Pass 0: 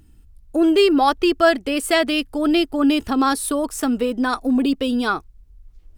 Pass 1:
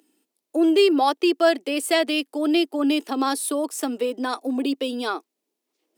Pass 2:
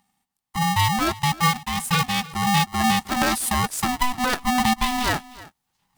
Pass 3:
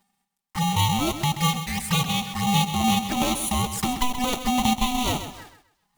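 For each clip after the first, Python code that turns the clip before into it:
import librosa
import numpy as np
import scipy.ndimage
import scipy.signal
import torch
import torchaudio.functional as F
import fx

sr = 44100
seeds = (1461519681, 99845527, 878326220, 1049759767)

y1 = scipy.signal.sosfilt(scipy.signal.butter(6, 280.0, 'highpass', fs=sr, output='sos'), x)
y1 = fx.peak_eq(y1, sr, hz=1400.0, db=-6.5, octaves=0.81)
y1 = y1 * 10.0 ** (-1.5 / 20.0)
y2 = fx.rider(y1, sr, range_db=10, speed_s=2.0)
y2 = y2 + 10.0 ** (-19.5 / 20.0) * np.pad(y2, (int(311 * sr / 1000.0), 0))[:len(y2)]
y2 = y2 * np.sign(np.sin(2.0 * np.pi * 500.0 * np.arange(len(y2)) / sr))
y3 = fx.block_float(y2, sr, bits=3)
y3 = fx.env_flanger(y3, sr, rest_ms=5.1, full_db=-20.5)
y3 = fx.echo_feedback(y3, sr, ms=130, feedback_pct=27, wet_db=-10)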